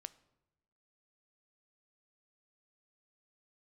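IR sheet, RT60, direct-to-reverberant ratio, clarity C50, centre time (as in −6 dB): 1.0 s, 15.0 dB, 19.0 dB, 3 ms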